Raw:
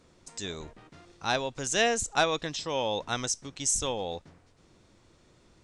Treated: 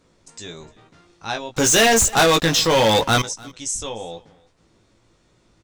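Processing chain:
double-tracking delay 18 ms −4.5 dB
0:01.55–0:03.22: leveller curve on the samples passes 5
single-tap delay 298 ms −23.5 dB

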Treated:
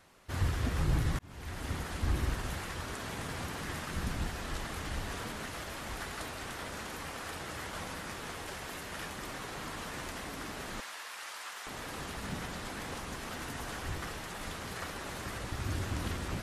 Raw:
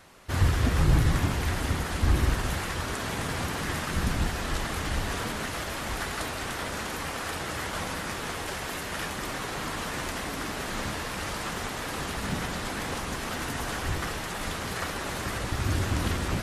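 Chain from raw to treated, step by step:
0:01.19–0:01.75: fade in
0:10.80–0:11.67: high-pass filter 930 Hz 12 dB per octave
level −8 dB

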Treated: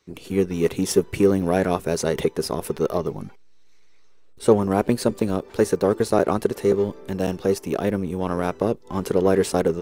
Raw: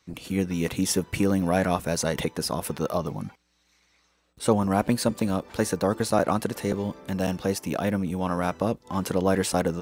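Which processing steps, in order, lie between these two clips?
parametric band 400 Hz +12.5 dB 0.42 octaves
in parallel at −7 dB: slack as between gear wheels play −18.5 dBFS
on the sum: level −2 dB

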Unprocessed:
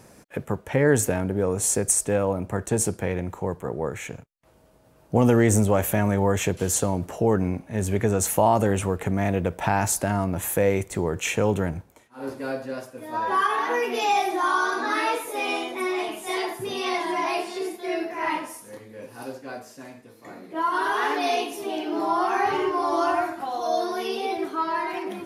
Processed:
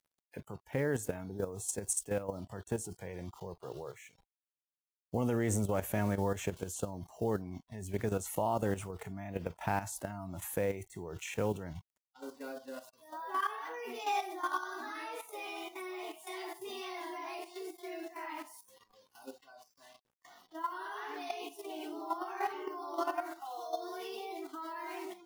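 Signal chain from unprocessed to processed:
bit reduction 7 bits
output level in coarse steps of 11 dB
noise reduction from a noise print of the clip's start 18 dB
level −9 dB

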